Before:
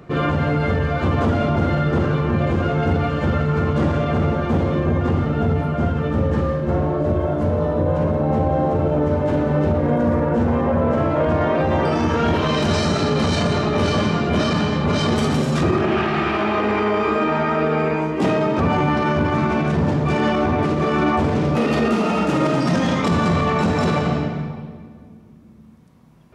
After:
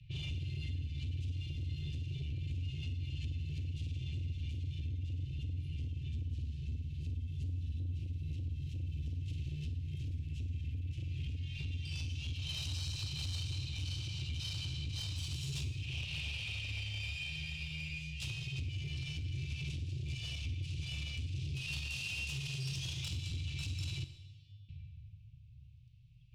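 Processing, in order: level-controlled noise filter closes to 2.4 kHz, open at -15 dBFS; Chebyshev band-stop 130–2600 Hz, order 5; compression 12:1, threshold -31 dBFS, peak gain reduction 14 dB; 24.04–24.69 s: feedback comb 100 Hz, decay 0.65 s, harmonics odd, mix 100%; saturation -32 dBFS, distortion -15 dB; Schroeder reverb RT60 0.95 s, combs from 30 ms, DRR 10.5 dB; trim -2 dB

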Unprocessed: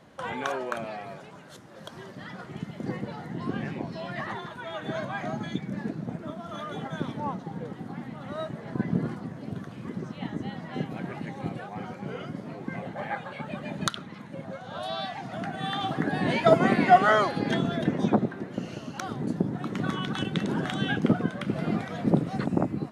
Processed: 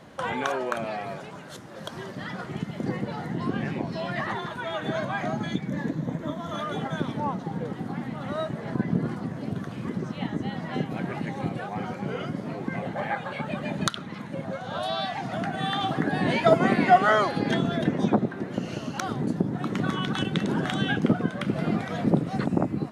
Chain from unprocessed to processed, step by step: 5.69–6.54 s: rippled EQ curve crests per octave 1.1, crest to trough 7 dB; in parallel at +2.5 dB: compression, threshold -33 dBFS, peak gain reduction 20 dB; on the sum: trim -1.5 dB

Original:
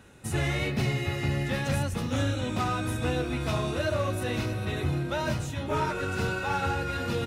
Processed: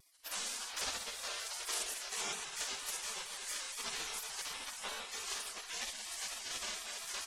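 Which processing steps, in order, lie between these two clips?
low-pass 8.6 kHz 12 dB/octave; treble shelf 2.6 kHz +10.5 dB; band-stop 2 kHz, Q 5.5; spectral gate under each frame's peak -25 dB weak; on a send at -14.5 dB: reverberation RT60 1.4 s, pre-delay 45 ms; on the sum: vibrato with a chosen wave square 4.3 Hz, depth 100 cents; trim +1 dB

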